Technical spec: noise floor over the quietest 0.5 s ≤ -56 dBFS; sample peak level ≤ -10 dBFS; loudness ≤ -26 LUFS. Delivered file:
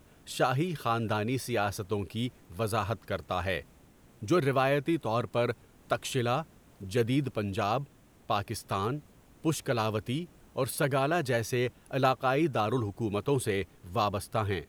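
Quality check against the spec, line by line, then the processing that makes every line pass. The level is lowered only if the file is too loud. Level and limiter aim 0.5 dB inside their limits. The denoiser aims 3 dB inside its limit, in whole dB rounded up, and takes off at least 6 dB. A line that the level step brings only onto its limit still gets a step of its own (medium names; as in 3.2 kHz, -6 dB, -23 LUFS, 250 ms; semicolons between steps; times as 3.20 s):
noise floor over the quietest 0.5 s -58 dBFS: pass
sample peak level -12.0 dBFS: pass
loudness -31.0 LUFS: pass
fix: none needed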